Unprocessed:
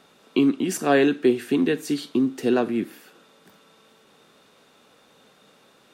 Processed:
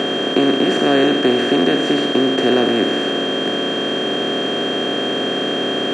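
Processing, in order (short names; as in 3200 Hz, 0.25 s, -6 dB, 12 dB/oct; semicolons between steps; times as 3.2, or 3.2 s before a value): per-bin compression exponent 0.2; air absorption 120 m; whine 3200 Hz -22 dBFS; gain -1 dB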